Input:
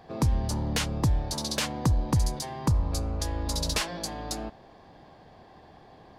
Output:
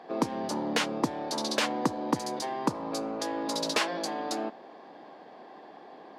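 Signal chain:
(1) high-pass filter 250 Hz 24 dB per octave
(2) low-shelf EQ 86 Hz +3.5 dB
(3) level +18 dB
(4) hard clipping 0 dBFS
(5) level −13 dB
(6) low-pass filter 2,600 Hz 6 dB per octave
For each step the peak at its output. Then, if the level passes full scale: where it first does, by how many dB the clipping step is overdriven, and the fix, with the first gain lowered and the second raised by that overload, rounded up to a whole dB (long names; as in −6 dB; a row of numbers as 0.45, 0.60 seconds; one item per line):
−13.5, −13.5, +4.5, 0.0, −13.0, −13.0 dBFS
step 3, 4.5 dB
step 3 +13 dB, step 5 −8 dB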